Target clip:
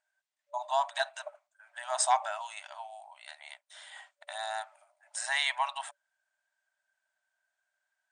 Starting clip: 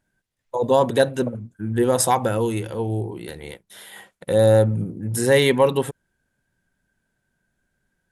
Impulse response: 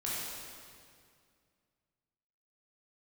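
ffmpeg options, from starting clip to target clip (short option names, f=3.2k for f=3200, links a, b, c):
-af "afftfilt=real='re*between(b*sr/4096,580,9300)':imag='im*between(b*sr/4096,580,9300)':win_size=4096:overlap=0.75,volume=-6dB"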